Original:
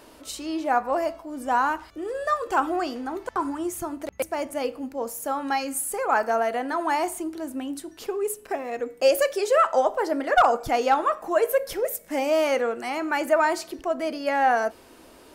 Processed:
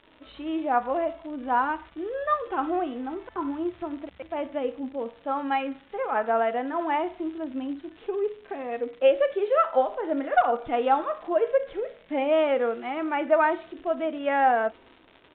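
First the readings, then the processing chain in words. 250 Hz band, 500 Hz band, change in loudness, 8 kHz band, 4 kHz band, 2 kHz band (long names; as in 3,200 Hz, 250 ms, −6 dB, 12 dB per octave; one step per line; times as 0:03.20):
0.0 dB, −1.0 dB, −1.5 dB, below −40 dB, −6.5 dB, −3.5 dB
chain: harmonic and percussive parts rebalanced percussive −12 dB
downward expander −47 dBFS
surface crackle 190 per second −35 dBFS
downsampling to 8,000 Hz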